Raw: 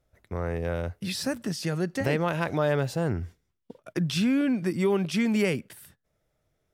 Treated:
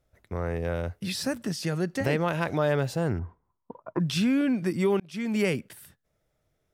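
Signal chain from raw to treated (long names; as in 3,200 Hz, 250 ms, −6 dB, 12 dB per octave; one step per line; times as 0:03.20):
0:03.19–0:04.00: low-pass with resonance 1,000 Hz, resonance Q 9
0:05.00–0:05.46: fade in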